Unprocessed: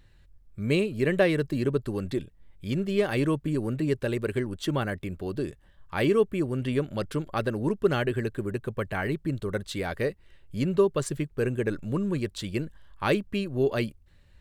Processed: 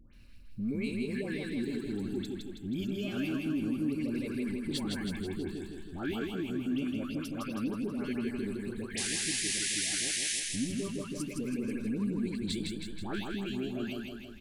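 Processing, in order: drifting ripple filter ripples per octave 0.92, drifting -0.27 Hz, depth 8 dB; band-stop 1.9 kHz, Q 5.4; painted sound noise, 8.84–10.27 s, 1.6–11 kHz -21 dBFS; compression 12:1, threshold -35 dBFS, peak gain reduction 18.5 dB; graphic EQ 125/250/500/1000/2000 Hz -10/+10/-9/-8/+3 dB; feedback delay 161 ms, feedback 56%, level -4 dB; transient shaper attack -4 dB, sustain +2 dB; phase dispersion highs, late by 138 ms, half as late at 1.3 kHz; trim +3.5 dB

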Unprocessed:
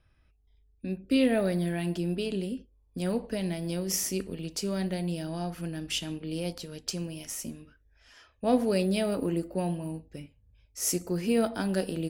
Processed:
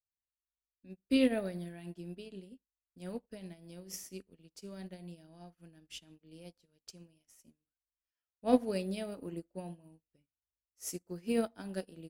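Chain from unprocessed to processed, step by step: crackle 85 per s -48 dBFS; upward expansion 2.5:1, over -48 dBFS

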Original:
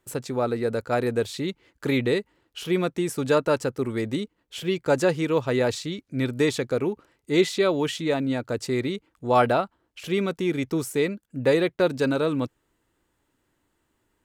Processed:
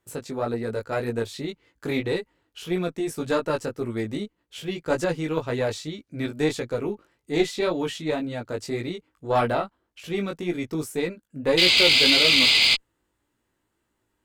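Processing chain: painted sound noise, 11.57–12.75 s, 2–5 kHz -15 dBFS; chorus 1.8 Hz, delay 17 ms, depth 2.7 ms; Chebyshev shaper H 6 -24 dB, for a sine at -4.5 dBFS

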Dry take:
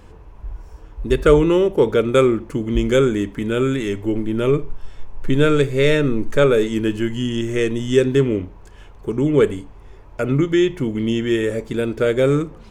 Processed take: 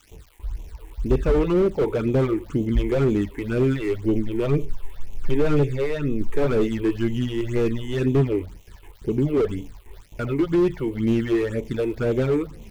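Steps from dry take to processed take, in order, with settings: gate with hold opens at -32 dBFS; treble shelf 6.1 kHz -8.5 dB; crackle 550 per s -39 dBFS; 5.63–6.21 s: compression 5:1, threshold -19 dBFS, peak gain reduction 8 dB; phase shifter stages 8, 2 Hz, lowest notch 170–1500 Hz; slew-rate limiter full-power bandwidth 58 Hz

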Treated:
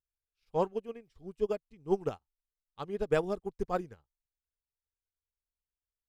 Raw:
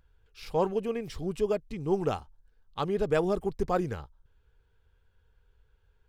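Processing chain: upward expansion 2.5:1, over -45 dBFS

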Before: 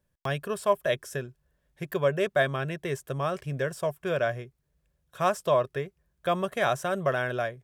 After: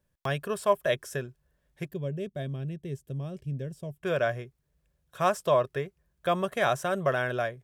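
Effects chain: 1.88–4.03 s: FFT filter 230 Hz 0 dB, 1.3 kHz -25 dB, 3 kHz -13 dB

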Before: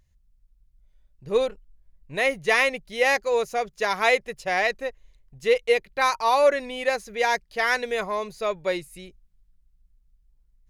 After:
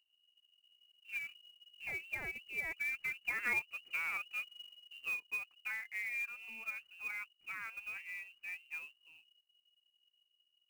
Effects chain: Doppler pass-by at 3.56 s, 48 m/s, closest 5.7 m; peaking EQ 2.2 kHz -14 dB 0.99 oct; compression 4:1, threshold -52 dBFS, peak gain reduction 27 dB; frequency inversion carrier 2.9 kHz; short-mantissa float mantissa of 2-bit; trim +13.5 dB

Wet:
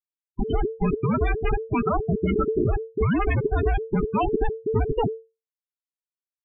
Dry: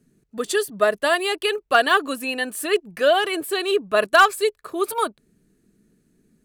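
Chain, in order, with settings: Schmitt trigger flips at -23.5 dBFS; loudest bins only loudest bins 16; frequency shift -450 Hz; trim +2.5 dB

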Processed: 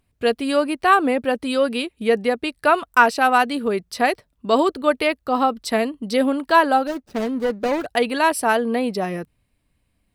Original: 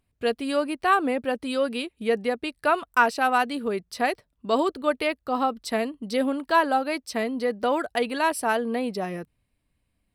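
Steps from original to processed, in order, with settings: 6.87–7.86 s: median filter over 41 samples; trim +5.5 dB

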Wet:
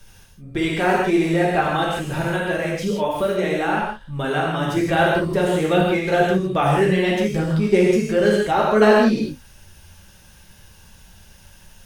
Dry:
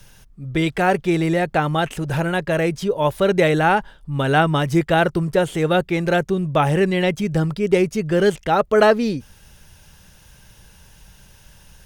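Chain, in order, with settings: 2.25–4.77 s: compression, threshold -18 dBFS, peak gain reduction 7.5 dB; flange 1.7 Hz, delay 8.3 ms, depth 5.8 ms, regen +37%; gated-style reverb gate 190 ms flat, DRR -3 dB

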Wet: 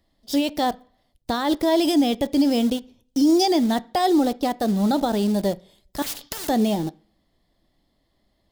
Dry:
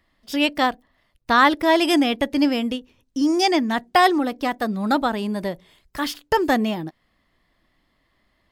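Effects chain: in parallel at -5 dB: bit crusher 5-bit; on the sum: peak limiter -11 dBFS, peak gain reduction 10.5 dB; high-order bell 1.7 kHz -10.5 dB; on a send at -14.5 dB: reverberation RT60 0.50 s, pre-delay 3 ms; 6.02–6.49 s: on the sum: spectrum-flattening compressor 4:1

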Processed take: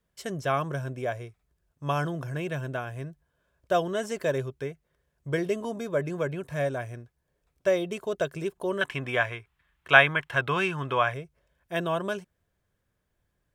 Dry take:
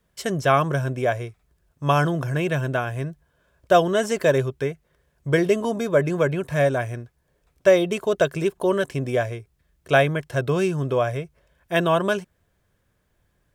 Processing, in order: 8.81–11.14 s: high-order bell 1.7 kHz +14 dB 2.4 oct; trim -8.5 dB

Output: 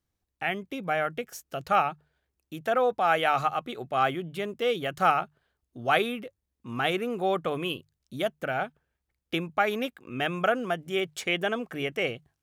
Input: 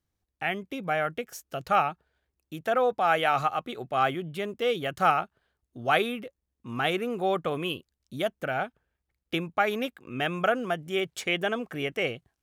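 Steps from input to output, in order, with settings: hum notches 50/100/150 Hz

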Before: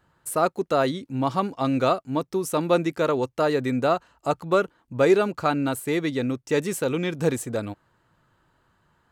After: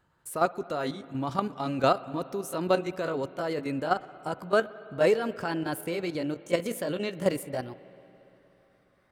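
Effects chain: pitch bend over the whole clip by +3.5 st starting unshifted; level held to a coarse grid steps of 10 dB; spring tank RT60 3.5 s, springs 55/59 ms, chirp 70 ms, DRR 16.5 dB

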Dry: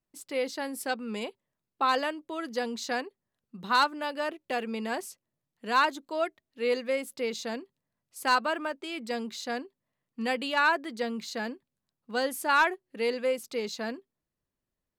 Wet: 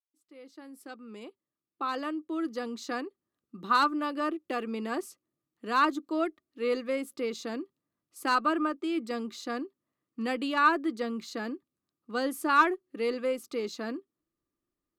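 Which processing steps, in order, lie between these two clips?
fade-in on the opening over 3.48 s; Chebyshev shaper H 4 -35 dB, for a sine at -14 dBFS; small resonant body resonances 320/1200 Hz, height 15 dB, ringing for 40 ms; trim -4.5 dB

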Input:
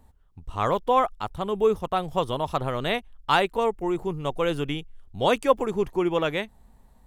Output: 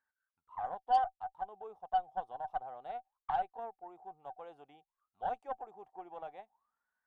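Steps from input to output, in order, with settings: auto-wah 760–1600 Hz, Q 22, down, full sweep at -26.5 dBFS; treble shelf 4.1 kHz +10.5 dB; Chebyshev shaper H 6 -26 dB, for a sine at -19.5 dBFS

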